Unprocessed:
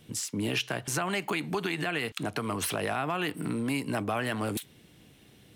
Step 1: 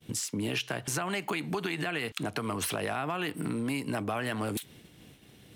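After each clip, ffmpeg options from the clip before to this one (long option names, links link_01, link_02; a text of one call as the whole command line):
ffmpeg -i in.wav -af "agate=range=-33dB:threshold=-50dB:ratio=3:detection=peak,acompressor=threshold=-45dB:ratio=2,volume=8dB" out.wav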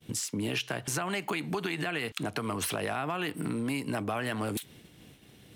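ffmpeg -i in.wav -af anull out.wav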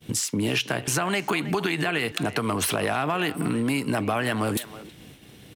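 ffmpeg -i in.wav -filter_complex "[0:a]asplit=2[link_01][link_02];[link_02]adelay=320,highpass=300,lowpass=3400,asoftclip=type=hard:threshold=-26dB,volume=-14dB[link_03];[link_01][link_03]amix=inputs=2:normalize=0,volume=7dB" out.wav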